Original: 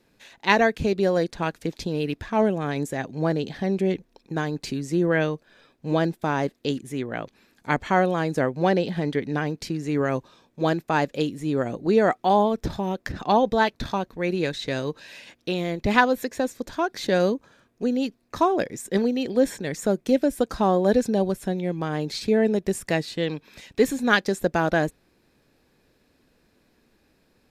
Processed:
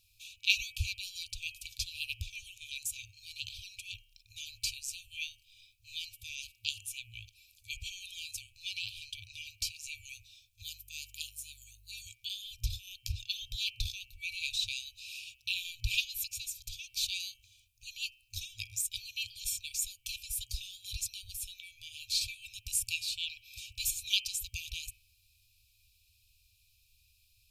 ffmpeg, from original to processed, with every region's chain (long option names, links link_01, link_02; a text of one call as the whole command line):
ffmpeg -i in.wav -filter_complex "[0:a]asettb=1/sr,asplit=3[link_01][link_02][link_03];[link_01]atrim=end=10.624[link_04];[link_02]atrim=start=10.62:end=12.07,asetpts=PTS-STARTPTS,afade=type=in:duration=0.004:curve=qsin,afade=type=out:start_time=1.446:duration=0.004:curve=qsin,aderivative,aeval=exprs='val(0)+0.00112*(sin(2*PI*50*n/s)+sin(2*PI*2*50*n/s)/2+sin(2*PI*3*50*n/s)/3+sin(2*PI*4*50*n/s)/4+sin(2*PI*5*50*n/s)/5)':channel_layout=same[link_05];[link_03]atrim=start=12.066[link_06];[link_04][link_05]acrossfade=duration=0.004:curve1=hsin:curve2=qsin[link_07];[link_07][link_06]acrossfade=duration=0.004:curve1=qsin:curve2=hsin,bandreject=frequency=128:width_type=h:width=4,bandreject=frequency=256:width_type=h:width=4,bandreject=frequency=384:width_type=h:width=4,bandreject=frequency=512:width_type=h:width=4,bandreject=frequency=640:width_type=h:width=4,bandreject=frequency=768:width_type=h:width=4,bandreject=frequency=896:width_type=h:width=4,bandreject=frequency=1024:width_type=h:width=4,bandreject=frequency=1152:width_type=h:width=4,bandreject=frequency=1280:width_type=h:width=4,bandreject=frequency=1408:width_type=h:width=4,bandreject=frequency=1536:width_type=h:width=4,bandreject=frequency=1664:width_type=h:width=4,bandreject=frequency=1792:width_type=h:width=4,bandreject=frequency=1920:width_type=h:width=4,bandreject=frequency=2048:width_type=h:width=4,bandreject=frequency=2176:width_type=h:width=4,bandreject=frequency=2304:width_type=h:width=4,bandreject=frequency=2432:width_type=h:width=4,bandreject=frequency=2560:width_type=h:width=4,bandreject=frequency=2688:width_type=h:width=4,bandreject=frequency=2816:width_type=h:width=4,bandreject=frequency=2944:width_type=h:width=4,bandreject=frequency=3072:width_type=h:width=4,bandreject=frequency=3200:width_type=h:width=4,afftfilt=real='re*(1-between(b*sr/4096,110,2300))':imag='im*(1-between(b*sr/4096,110,2300))':win_size=4096:overlap=0.75,highshelf=frequency=9800:gain=11" out.wav